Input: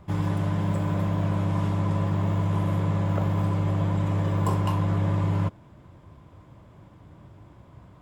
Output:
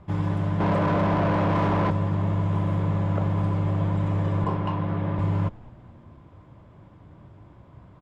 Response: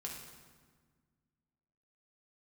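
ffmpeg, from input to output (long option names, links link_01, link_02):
-filter_complex "[0:a]aemphasis=mode=reproduction:type=50fm,asettb=1/sr,asplit=3[link_01][link_02][link_03];[link_01]atrim=end=0.604[link_04];[link_02]atrim=start=0.6:end=1.91,asetpts=PTS-STARTPTS,afade=type=in:duration=0.004:curve=qsin,afade=type=out:start_time=1.306:duration=0.004:curve=qsin,asplit=2[link_05][link_06];[link_06]highpass=frequency=720:poles=1,volume=28dB,asoftclip=type=tanh:threshold=-14dB[link_07];[link_05][link_07]amix=inputs=2:normalize=0,lowpass=frequency=1000:poles=1,volume=-6dB[link_08];[link_03]atrim=start=1.906[link_09];[link_04][link_08]acrossfade=duration=0.004:curve1=hsin:curve2=qsin[link_10];[link_10][link_09]acrossfade=duration=0.004:curve1=qsin:curve2=hsin,asettb=1/sr,asplit=3[link_11][link_12][link_13];[link_11]atrim=end=4.444[link_14];[link_12]atrim=start=4.44:end=5.19,asetpts=PTS-STARTPTS,afade=type=in:duration=0.004:curve=qsin,afade=type=out:start_time=0.746:duration=0.004:curve=qsin,highpass=120,lowpass=3800[link_15];[link_13]atrim=start=5.186[link_16];[link_14][link_15]acrossfade=duration=0.004:curve1=hsin:curve2=qsin[link_17];[link_17][link_16]acrossfade=duration=0.004:curve1=qsin:curve2=hsin,asplit=5[link_18][link_19][link_20][link_21][link_22];[link_19]adelay=213,afreqshift=-110,volume=-23.5dB[link_23];[link_20]adelay=426,afreqshift=-220,volume=-28.5dB[link_24];[link_21]adelay=639,afreqshift=-330,volume=-33.6dB[link_25];[link_22]adelay=852,afreqshift=-440,volume=-38.6dB[link_26];[link_18][link_23][link_24][link_25][link_26]amix=inputs=5:normalize=0"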